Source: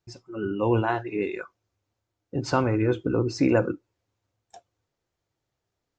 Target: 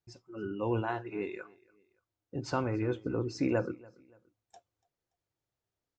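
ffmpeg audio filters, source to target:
-af "aecho=1:1:287|574:0.0631|0.024,volume=-8.5dB"

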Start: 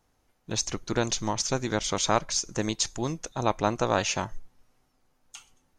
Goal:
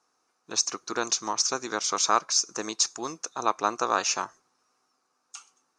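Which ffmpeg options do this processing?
-af "highpass=440,equalizer=f=580:t=q:w=4:g=-8,equalizer=f=850:t=q:w=4:g=-3,equalizer=f=1.2k:t=q:w=4:g=7,equalizer=f=2k:t=q:w=4:g=-7,equalizer=f=3.2k:t=q:w=4:g=-9,equalizer=f=5.6k:t=q:w=4:g=5,lowpass=f=9.3k:w=0.5412,lowpass=f=9.3k:w=1.3066,volume=2dB"

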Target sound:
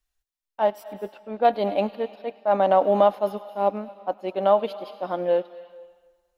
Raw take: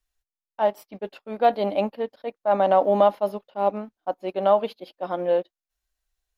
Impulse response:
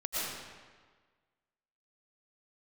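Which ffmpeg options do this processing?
-filter_complex "[0:a]asettb=1/sr,asplit=3[a][b][c];[a]atrim=end=0.844[d];[b]atrim=start=0.84:end=1.45,asetpts=PTS-STARTPTS,afade=t=in:d=0.004:c=qsin,afade=t=out:st=0.606:d=0.004:c=qsin,lowpass=f=1.6k:p=1[e];[c]atrim=start=1.446[f];[d][e]acrossfade=d=0.004:c1=hsin:c2=qsin[g];[g][f]acrossfade=d=0.004:c1=qsin:c2=hsin,asplit=2[h][i];[i]equalizer=f=150:w=0.4:g=-5[j];[1:a]atrim=start_sample=2205,highshelf=f=2.1k:g=10.5,adelay=101[k];[j][k]afir=irnorm=-1:irlink=0,volume=-25dB[l];[h][l]amix=inputs=2:normalize=0"

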